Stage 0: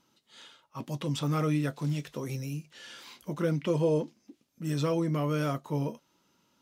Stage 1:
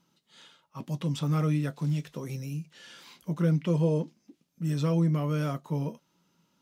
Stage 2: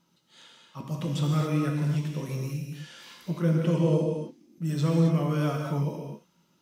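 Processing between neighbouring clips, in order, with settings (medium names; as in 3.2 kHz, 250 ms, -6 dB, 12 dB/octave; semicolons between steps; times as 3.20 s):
peaking EQ 170 Hz +13 dB 0.28 oct; trim -2.5 dB
gated-style reverb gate 300 ms flat, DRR 0 dB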